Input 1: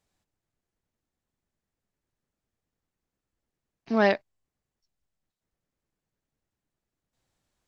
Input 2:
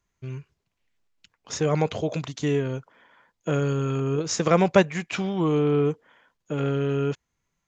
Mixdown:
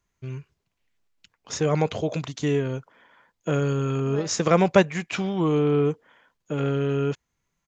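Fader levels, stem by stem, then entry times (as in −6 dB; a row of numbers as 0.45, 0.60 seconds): −19.0, +0.5 decibels; 0.15, 0.00 seconds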